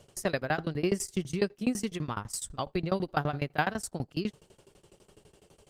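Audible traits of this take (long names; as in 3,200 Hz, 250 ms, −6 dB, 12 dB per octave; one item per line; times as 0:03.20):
tremolo saw down 12 Hz, depth 100%
Opus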